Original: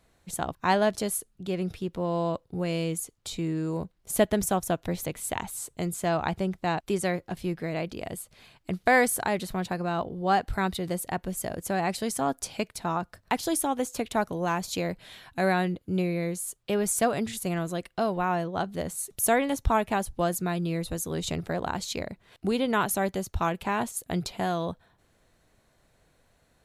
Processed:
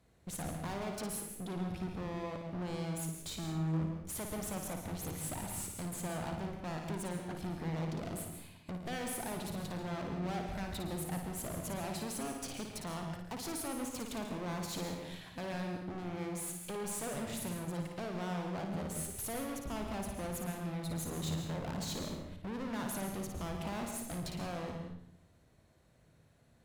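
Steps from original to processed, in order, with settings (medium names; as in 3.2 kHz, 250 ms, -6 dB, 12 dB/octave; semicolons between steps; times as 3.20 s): high-pass 63 Hz 12 dB/octave; bass shelf 390 Hz +8.5 dB; waveshaping leveller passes 1; compression, threshold -22 dBFS, peak gain reduction 11.5 dB; valve stage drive 36 dB, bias 0.55; flutter echo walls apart 9.6 m, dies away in 0.54 s; on a send at -6 dB: reverberation RT60 0.50 s, pre-delay 137 ms; on the sum: trim -3 dB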